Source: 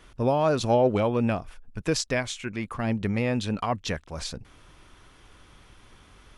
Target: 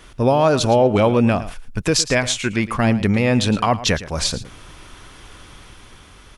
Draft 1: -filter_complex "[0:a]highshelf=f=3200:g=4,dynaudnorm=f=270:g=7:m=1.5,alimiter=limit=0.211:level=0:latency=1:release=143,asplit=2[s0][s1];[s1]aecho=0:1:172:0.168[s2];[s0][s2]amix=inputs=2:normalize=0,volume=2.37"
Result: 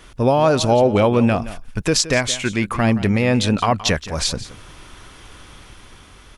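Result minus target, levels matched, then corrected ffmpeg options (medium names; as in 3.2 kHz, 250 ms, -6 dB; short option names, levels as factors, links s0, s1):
echo 60 ms late
-filter_complex "[0:a]highshelf=f=3200:g=4,dynaudnorm=f=270:g=7:m=1.5,alimiter=limit=0.211:level=0:latency=1:release=143,asplit=2[s0][s1];[s1]aecho=0:1:112:0.168[s2];[s0][s2]amix=inputs=2:normalize=0,volume=2.37"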